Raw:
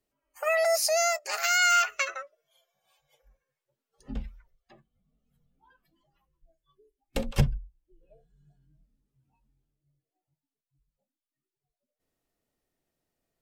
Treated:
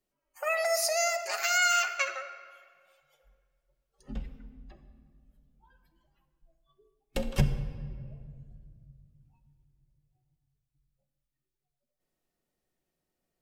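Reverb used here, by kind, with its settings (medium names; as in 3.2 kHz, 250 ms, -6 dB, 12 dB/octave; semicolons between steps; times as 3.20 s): simulated room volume 3700 m³, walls mixed, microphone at 1 m; trim -2.5 dB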